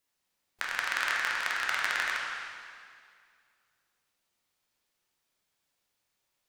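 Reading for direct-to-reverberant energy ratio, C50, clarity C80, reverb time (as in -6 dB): -4.0 dB, -1.0 dB, 1.0 dB, 2.2 s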